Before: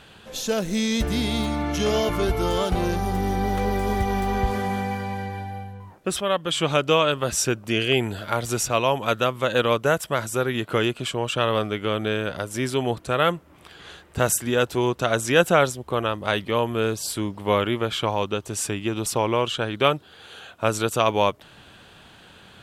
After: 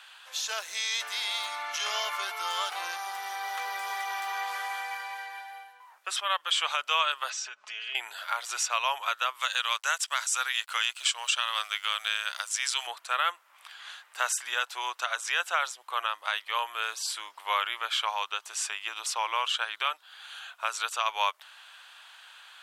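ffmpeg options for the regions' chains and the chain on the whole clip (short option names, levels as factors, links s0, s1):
-filter_complex "[0:a]asettb=1/sr,asplit=3[s0][s1][s2];[s0]atrim=end=7.304[s3];[s1]atrim=start=7.3:end=7.95,asetpts=PTS-STARTPTS,afade=t=in:d=0.004:c=qsin,afade=t=out:st=0.646:d=0.004:c=qsin,lowpass=f=6400:w=0.5412,lowpass=f=6400:w=1.3066,acompressor=threshold=0.0251:ratio=5:attack=3.2:release=140:knee=1:detection=peak,aecho=1:1:4.7:0.62,atrim=end_sample=28665[s4];[s2]atrim=start=7.946[s5];[s3][s4]acrossfade=d=0.004:c1=hsin:c2=qsin[s6];[s6][s5]acrossfade=d=0.004:c1=qsin:c2=hsin,asettb=1/sr,asplit=3[s7][s8][s9];[s7]atrim=end=9.414[s10];[s8]atrim=start=9.41:end=12.87,asetpts=PTS-STARTPTS,afade=t=in:d=0.004:c=qsin,afade=t=out:st=3.456:d=0.004:c=qsin,highpass=f=820:p=1,equalizer=f=7700:w=0.51:g=12,aeval=exprs='sgn(val(0))*max(abs(val(0))-0.00299,0)':c=same[s11];[s9]atrim=start=12.866[s12];[s10][s11]acrossfade=d=0.004:c1=hsin:c2=qsin[s13];[s13][s12]acrossfade=d=0.004:c1=qsin:c2=hsin,highpass=f=950:w=0.5412,highpass=f=950:w=1.3066,acrossover=split=7900[s14][s15];[s15]acompressor=threshold=0.00398:ratio=4:attack=1:release=60[s16];[s14][s16]amix=inputs=2:normalize=0,alimiter=limit=0.2:level=0:latency=1:release=250"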